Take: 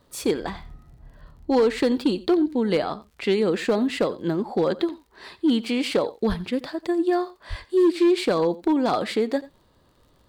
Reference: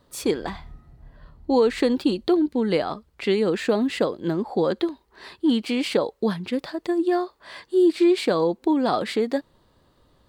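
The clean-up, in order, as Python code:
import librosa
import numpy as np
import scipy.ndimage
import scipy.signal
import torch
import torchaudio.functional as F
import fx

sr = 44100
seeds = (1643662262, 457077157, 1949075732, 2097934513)

y = fx.fix_declip(x, sr, threshold_db=-13.5)
y = fx.fix_declick_ar(y, sr, threshold=6.5)
y = fx.fix_deplosive(y, sr, at_s=(6.28, 7.49))
y = fx.fix_echo_inverse(y, sr, delay_ms=88, level_db=-19.0)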